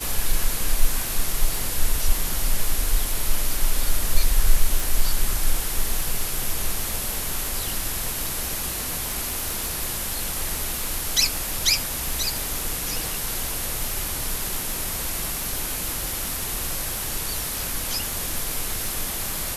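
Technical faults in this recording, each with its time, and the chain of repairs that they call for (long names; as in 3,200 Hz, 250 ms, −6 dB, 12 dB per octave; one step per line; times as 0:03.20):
surface crackle 31 per second −25 dBFS
0:04.80: click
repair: click removal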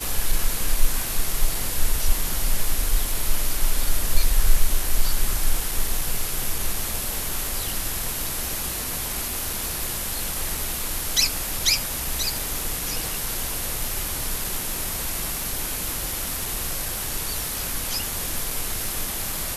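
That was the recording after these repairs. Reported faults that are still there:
0:04.80: click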